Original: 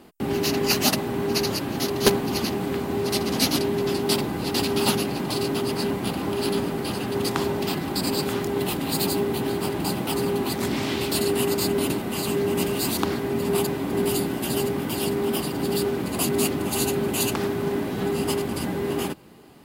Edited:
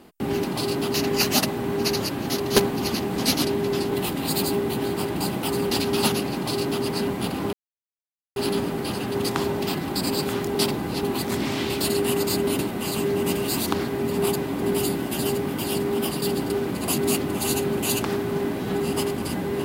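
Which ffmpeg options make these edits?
-filter_complex "[0:a]asplit=11[a][b][c][d][e][f][g][h][i][j][k];[a]atrim=end=0.442[l];[b]atrim=start=5.168:end=5.672[m];[c]atrim=start=0.438:end=2.662[n];[d]atrim=start=3.298:end=4.052[o];[e]atrim=start=8.548:end=10.342[p];[f]atrim=start=4.528:end=6.36,asetpts=PTS-STARTPTS,afade=t=out:st=1.828:d=0.004:c=hsin,apad=pad_dur=0.83[q];[g]atrim=start=6.36:end=8.552,asetpts=PTS-STARTPTS,afade=t=in:d=0.004:c=hsin[r];[h]atrim=start=4.048:end=4.532[s];[i]atrim=start=10.338:end=15.532[t];[j]atrim=start=15.528:end=15.812,asetpts=PTS-STARTPTS,areverse[u];[k]atrim=start=15.808[v];[l][m]acrossfade=d=0.004:c1=hsin:c2=hsin[w];[w][n]acrossfade=d=0.004:c1=hsin:c2=hsin[x];[x][o]acrossfade=d=0.004:c1=hsin:c2=hsin[y];[y][p]acrossfade=d=0.004:c1=hsin:c2=hsin[z];[q][r]concat=n=2:v=0:a=1[aa];[z][aa]acrossfade=d=0.004:c1=hsin:c2=hsin[ab];[ab][s]acrossfade=d=0.004:c1=hsin:c2=hsin[ac];[ac][t]acrossfade=d=0.004:c1=hsin:c2=hsin[ad];[ad][u]acrossfade=d=0.004:c1=hsin:c2=hsin[ae];[ae][v]acrossfade=d=0.004:c1=hsin:c2=hsin"

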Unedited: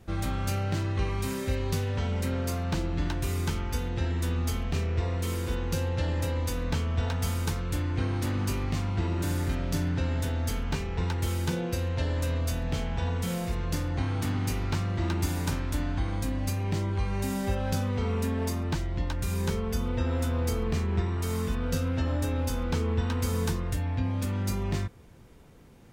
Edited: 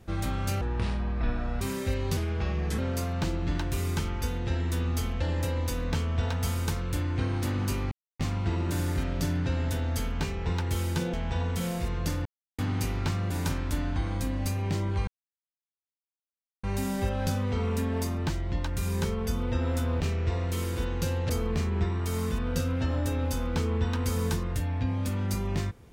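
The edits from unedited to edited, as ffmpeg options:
-filter_complex "[0:a]asplit=14[a][b][c][d][e][f][g][h][i][j][k][l][m][n];[a]atrim=end=0.614[o];[b]atrim=start=0.61:end=1.22,asetpts=PTS-STARTPTS,asetrate=26901,aresample=44100[p];[c]atrim=start=1.216:end=1.784[q];[d]atrim=start=1.78:end=2.29,asetpts=PTS-STARTPTS,asetrate=36603,aresample=44100[r];[e]atrim=start=2.286:end=4.712[s];[f]atrim=start=5.998:end=8.71,asetpts=PTS-STARTPTS,afade=t=out:st=2.708:d=0.004:c=hsin,apad=pad_dur=0.28[t];[g]atrim=start=8.71:end=11.652,asetpts=PTS-STARTPTS,afade=t=in:d=0.004:c=hsin[u];[h]atrim=start=12.798:end=13.92,asetpts=PTS-STARTPTS,afade=t=out:st=1.118:d=0.004:c=hsin[v];[i]atrim=start=13.92:end=14.25,asetpts=PTS-STARTPTS,volume=0[w];[j]atrim=start=14.25:end=14.972,asetpts=PTS-STARTPTS,afade=t=in:d=0.004:c=hsin[x];[k]atrim=start=15.318:end=17.09,asetpts=PTS-STARTPTS,afade=t=out:st=1.768:d=0.004:c=hsin,apad=pad_dur=1.56[y];[l]atrim=start=17.09:end=20.462,asetpts=PTS-STARTPTS,afade=t=in:d=0.004:c=hsin[z];[m]atrim=start=4.708:end=6.002[aa];[n]atrim=start=20.458[ab];[o][p]acrossfade=d=0.004:c1=hsin:c2=hsin[ac];[ac][q]acrossfade=d=0.004:c1=hsin:c2=hsin[ad];[ad][r]acrossfade=d=0.004:c1=hsin:c2=hsin[ae];[ae][s]acrossfade=d=0.004:c1=hsin:c2=hsin[af];[t][u]concat=n=2:v=0:a=1[ag];[af][ag]acrossfade=d=0.004:c1=hsin:c2=hsin[ah];[v][w][x]concat=n=3:v=0:a=1[ai];[ah][ai]acrossfade=d=0.004:c1=hsin:c2=hsin[aj];[y][z]concat=n=2:v=0:a=1[ak];[aj][ak]acrossfade=d=0.004:c1=hsin:c2=hsin[al];[al][aa]acrossfade=d=0.004:c1=hsin:c2=hsin[am];[am][ab]acrossfade=d=0.004:c1=hsin:c2=hsin"

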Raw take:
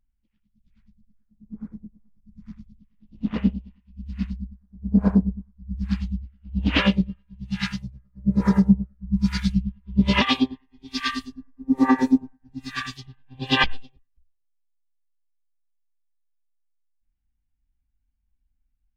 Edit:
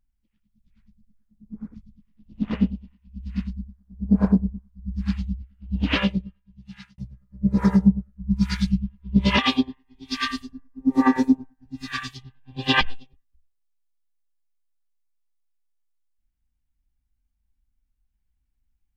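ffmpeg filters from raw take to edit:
-filter_complex "[0:a]asplit=3[a][b][c];[a]atrim=end=1.742[d];[b]atrim=start=2.568:end=7.81,asetpts=PTS-STARTPTS,afade=t=out:st=3.932:d=1.31[e];[c]atrim=start=7.81,asetpts=PTS-STARTPTS,afade=t=in:d=0.004:c=hsin[f];[e][f]concat=n=2:v=0:a=1[g];[d][g]acrossfade=d=0.004:c1=hsin:c2=hsin"

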